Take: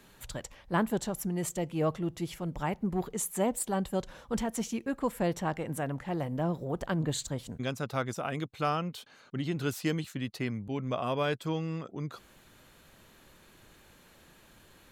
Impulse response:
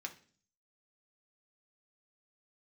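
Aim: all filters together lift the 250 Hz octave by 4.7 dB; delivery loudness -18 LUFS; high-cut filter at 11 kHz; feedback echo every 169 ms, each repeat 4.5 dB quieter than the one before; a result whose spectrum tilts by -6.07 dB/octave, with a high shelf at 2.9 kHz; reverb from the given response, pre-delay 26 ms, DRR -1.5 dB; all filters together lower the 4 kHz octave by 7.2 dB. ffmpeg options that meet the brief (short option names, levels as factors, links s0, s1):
-filter_complex "[0:a]lowpass=11000,equalizer=f=250:t=o:g=6.5,highshelf=f=2900:g=-6.5,equalizer=f=4000:t=o:g=-4.5,aecho=1:1:169|338|507|676|845|1014|1183|1352|1521:0.596|0.357|0.214|0.129|0.0772|0.0463|0.0278|0.0167|0.01,asplit=2[s0][s1];[1:a]atrim=start_sample=2205,adelay=26[s2];[s1][s2]afir=irnorm=-1:irlink=0,volume=1.33[s3];[s0][s3]amix=inputs=2:normalize=0,volume=2.66"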